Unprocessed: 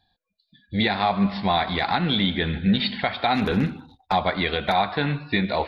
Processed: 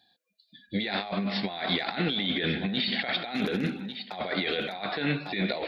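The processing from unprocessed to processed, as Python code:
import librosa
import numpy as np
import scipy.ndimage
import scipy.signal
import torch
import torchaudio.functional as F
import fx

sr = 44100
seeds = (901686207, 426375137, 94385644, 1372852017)

y = scipy.signal.sosfilt(scipy.signal.butter(2, 270.0, 'highpass', fs=sr, output='sos'), x)
y = y + 10.0 ** (-18.0 / 20.0) * np.pad(y, (int(1149 * sr / 1000.0), 0))[:len(y)]
y = fx.over_compress(y, sr, threshold_db=-29.0, ratio=-1.0)
y = fx.peak_eq(y, sr, hz=1000.0, db=-11.5, octaves=0.78)
y = F.gain(torch.from_numpy(y), 1.0).numpy()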